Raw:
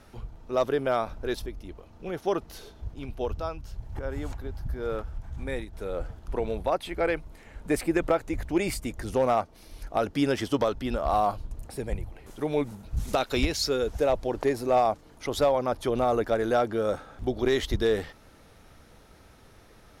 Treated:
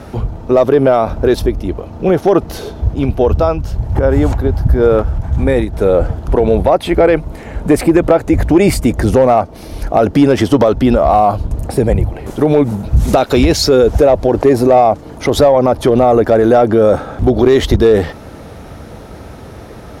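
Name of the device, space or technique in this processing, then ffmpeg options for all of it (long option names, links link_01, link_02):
mastering chain: -af "highpass=53,equalizer=frequency=680:width_type=o:width=0.86:gain=2.5,acompressor=threshold=-28dB:ratio=1.5,asoftclip=type=tanh:threshold=-16dB,tiltshelf=frequency=970:gain=5,asoftclip=type=hard:threshold=-17dB,alimiter=level_in=20.5dB:limit=-1dB:release=50:level=0:latency=1,volume=-1dB"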